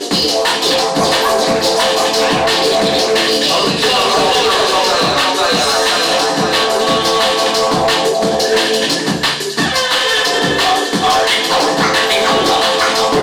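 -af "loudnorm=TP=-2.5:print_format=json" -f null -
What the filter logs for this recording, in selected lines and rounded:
"input_i" : "-12.2",
"input_tp" : "-7.2",
"input_lra" : "1.4",
"input_thresh" : "-22.2",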